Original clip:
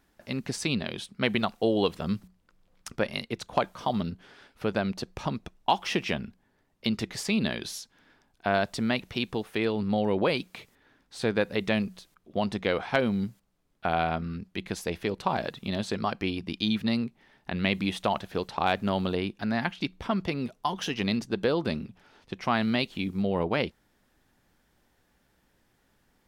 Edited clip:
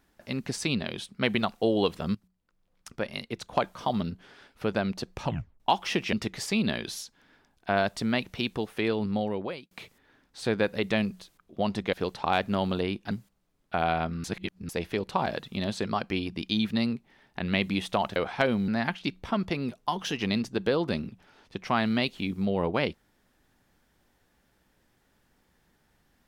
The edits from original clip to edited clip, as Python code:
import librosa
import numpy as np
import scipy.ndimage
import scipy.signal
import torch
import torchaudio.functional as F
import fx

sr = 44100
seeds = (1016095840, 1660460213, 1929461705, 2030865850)

y = fx.edit(x, sr, fx.fade_in_from(start_s=2.15, length_s=1.53, floor_db=-16.5),
    fx.tape_stop(start_s=5.24, length_s=0.36),
    fx.cut(start_s=6.13, length_s=0.77),
    fx.fade_out_span(start_s=9.8, length_s=0.68),
    fx.swap(start_s=12.7, length_s=0.52, other_s=18.27, other_length_s=1.18),
    fx.reverse_span(start_s=14.35, length_s=0.45), tone=tone)